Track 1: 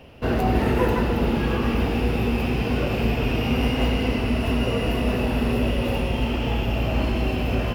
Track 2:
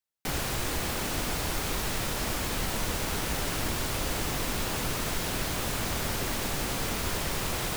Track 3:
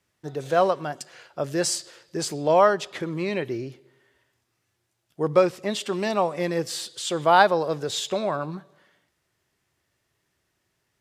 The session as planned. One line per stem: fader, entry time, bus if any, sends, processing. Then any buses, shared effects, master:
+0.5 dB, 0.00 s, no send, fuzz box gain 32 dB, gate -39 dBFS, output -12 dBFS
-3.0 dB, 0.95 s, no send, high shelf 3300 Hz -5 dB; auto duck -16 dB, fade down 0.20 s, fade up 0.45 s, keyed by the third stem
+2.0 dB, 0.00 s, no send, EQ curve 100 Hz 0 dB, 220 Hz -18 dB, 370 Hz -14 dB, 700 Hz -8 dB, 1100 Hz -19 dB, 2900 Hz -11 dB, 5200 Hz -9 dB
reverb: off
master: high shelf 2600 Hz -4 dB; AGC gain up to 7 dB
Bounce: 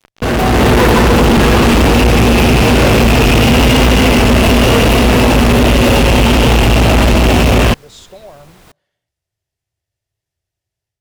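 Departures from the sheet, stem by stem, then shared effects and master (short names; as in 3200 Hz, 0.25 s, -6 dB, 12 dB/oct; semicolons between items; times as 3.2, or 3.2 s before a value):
stem 3 +2.0 dB -> -5.5 dB; master: missing high shelf 2600 Hz -4 dB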